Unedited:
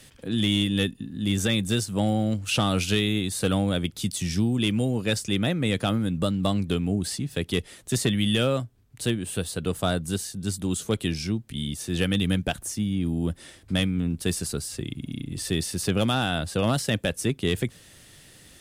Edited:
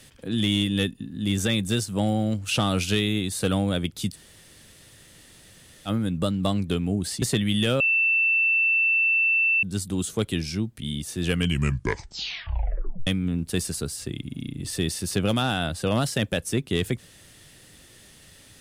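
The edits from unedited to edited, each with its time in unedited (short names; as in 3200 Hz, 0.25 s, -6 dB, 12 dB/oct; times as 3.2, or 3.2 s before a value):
4.13–5.88 room tone, crossfade 0.06 s
7.22–7.94 cut
8.52–10.35 bleep 2670 Hz -18 dBFS
11.95 tape stop 1.84 s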